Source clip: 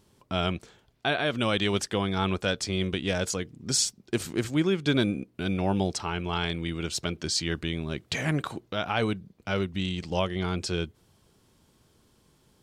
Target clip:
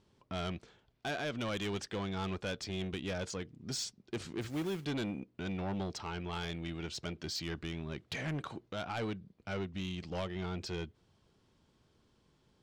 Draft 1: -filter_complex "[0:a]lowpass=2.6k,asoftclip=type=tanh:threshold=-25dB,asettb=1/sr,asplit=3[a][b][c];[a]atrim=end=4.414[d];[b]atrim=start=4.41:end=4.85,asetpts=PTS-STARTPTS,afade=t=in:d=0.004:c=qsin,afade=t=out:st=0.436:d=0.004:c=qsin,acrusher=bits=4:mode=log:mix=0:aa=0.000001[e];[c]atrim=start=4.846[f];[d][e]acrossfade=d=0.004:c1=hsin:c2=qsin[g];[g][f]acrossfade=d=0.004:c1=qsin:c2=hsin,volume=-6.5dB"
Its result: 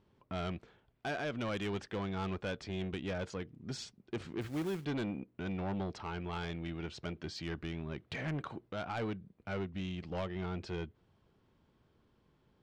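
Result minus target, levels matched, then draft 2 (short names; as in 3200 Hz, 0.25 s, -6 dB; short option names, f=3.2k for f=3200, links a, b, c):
4000 Hz band -4.5 dB
-filter_complex "[0:a]lowpass=5.3k,asoftclip=type=tanh:threshold=-25dB,asettb=1/sr,asplit=3[a][b][c];[a]atrim=end=4.414[d];[b]atrim=start=4.41:end=4.85,asetpts=PTS-STARTPTS,afade=t=in:d=0.004:c=qsin,afade=t=out:st=0.436:d=0.004:c=qsin,acrusher=bits=4:mode=log:mix=0:aa=0.000001[e];[c]atrim=start=4.846[f];[d][e]acrossfade=d=0.004:c1=hsin:c2=qsin[g];[g][f]acrossfade=d=0.004:c1=qsin:c2=hsin,volume=-6.5dB"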